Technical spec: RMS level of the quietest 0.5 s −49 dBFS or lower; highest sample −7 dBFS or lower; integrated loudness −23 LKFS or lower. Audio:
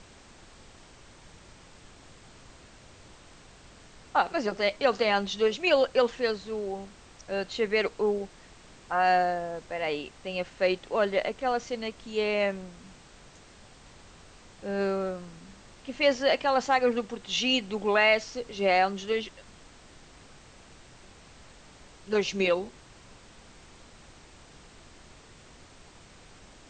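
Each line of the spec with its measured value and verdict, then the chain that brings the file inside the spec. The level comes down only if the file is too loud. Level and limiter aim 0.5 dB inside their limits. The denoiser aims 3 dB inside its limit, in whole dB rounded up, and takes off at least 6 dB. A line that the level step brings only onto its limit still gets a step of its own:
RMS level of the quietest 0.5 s −52 dBFS: in spec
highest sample −10.5 dBFS: in spec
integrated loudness −27.5 LKFS: in spec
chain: no processing needed

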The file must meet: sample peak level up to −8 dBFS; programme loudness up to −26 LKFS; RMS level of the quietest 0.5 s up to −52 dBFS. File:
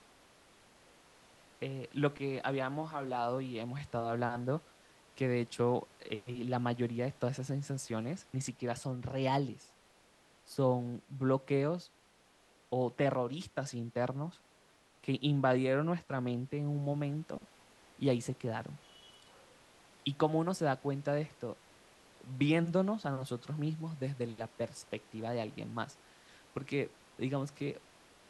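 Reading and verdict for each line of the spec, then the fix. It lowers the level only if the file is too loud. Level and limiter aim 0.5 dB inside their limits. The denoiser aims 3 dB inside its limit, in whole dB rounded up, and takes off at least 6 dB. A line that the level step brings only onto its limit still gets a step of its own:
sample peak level −17.0 dBFS: in spec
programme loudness −36.0 LKFS: in spec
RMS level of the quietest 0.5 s −66 dBFS: in spec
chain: no processing needed

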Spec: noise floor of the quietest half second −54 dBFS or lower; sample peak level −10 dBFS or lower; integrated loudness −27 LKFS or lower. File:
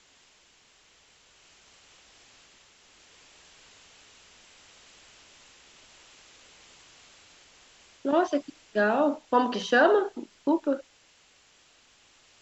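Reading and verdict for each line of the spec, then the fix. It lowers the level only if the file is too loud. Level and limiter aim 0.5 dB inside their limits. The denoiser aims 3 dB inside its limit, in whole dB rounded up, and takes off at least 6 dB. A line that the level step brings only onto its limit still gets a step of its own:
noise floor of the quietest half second −61 dBFS: in spec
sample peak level −8.0 dBFS: out of spec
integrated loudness −26.0 LKFS: out of spec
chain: level −1.5 dB
brickwall limiter −10.5 dBFS

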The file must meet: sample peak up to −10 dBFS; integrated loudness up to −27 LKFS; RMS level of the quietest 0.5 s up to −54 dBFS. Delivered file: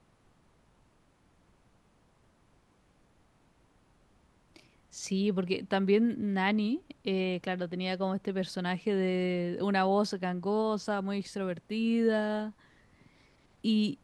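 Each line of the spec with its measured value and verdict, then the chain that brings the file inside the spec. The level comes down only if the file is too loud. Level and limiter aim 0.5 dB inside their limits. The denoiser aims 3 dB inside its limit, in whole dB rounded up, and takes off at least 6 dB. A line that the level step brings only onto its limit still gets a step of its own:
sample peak −14.5 dBFS: in spec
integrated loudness −31.0 LKFS: in spec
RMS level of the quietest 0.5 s −66 dBFS: in spec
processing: no processing needed

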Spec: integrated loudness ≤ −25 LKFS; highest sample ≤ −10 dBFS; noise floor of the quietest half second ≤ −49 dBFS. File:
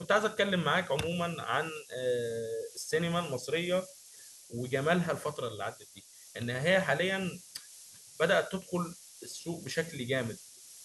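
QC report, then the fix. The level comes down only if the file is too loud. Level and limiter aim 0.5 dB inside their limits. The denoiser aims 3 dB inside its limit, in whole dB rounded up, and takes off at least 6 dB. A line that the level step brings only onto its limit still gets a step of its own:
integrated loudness −32.0 LKFS: in spec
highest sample −13.0 dBFS: in spec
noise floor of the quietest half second −54 dBFS: in spec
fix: no processing needed

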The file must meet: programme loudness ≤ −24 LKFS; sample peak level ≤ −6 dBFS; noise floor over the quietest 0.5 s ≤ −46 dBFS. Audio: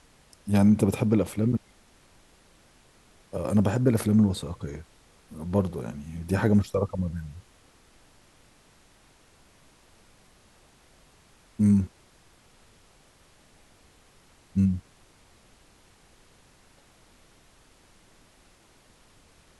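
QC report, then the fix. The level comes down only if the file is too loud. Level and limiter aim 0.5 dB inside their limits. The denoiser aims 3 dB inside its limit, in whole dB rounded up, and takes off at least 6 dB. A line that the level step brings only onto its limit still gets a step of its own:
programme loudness −26.0 LKFS: in spec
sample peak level −9.0 dBFS: in spec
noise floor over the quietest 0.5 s −58 dBFS: in spec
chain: no processing needed

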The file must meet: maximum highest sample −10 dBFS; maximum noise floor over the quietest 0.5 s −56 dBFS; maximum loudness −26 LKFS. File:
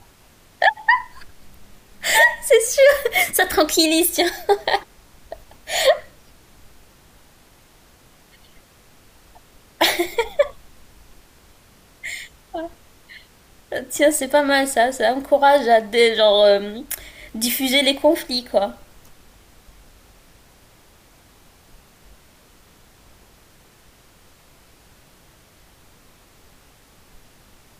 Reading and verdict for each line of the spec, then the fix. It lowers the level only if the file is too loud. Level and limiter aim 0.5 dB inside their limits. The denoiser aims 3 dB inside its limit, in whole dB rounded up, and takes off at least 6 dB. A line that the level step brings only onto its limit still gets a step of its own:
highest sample −4.5 dBFS: out of spec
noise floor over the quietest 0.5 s −52 dBFS: out of spec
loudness −17.5 LKFS: out of spec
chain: level −9 dB

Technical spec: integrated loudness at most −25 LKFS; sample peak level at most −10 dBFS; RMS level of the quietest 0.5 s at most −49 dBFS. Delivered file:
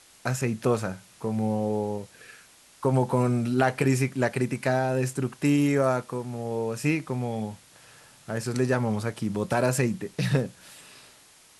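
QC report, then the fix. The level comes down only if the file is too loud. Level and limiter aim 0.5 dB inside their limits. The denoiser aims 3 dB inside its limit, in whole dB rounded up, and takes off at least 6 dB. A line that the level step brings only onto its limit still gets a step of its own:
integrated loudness −27.0 LKFS: in spec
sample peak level −9.0 dBFS: out of spec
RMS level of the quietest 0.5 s −55 dBFS: in spec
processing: brickwall limiter −10.5 dBFS

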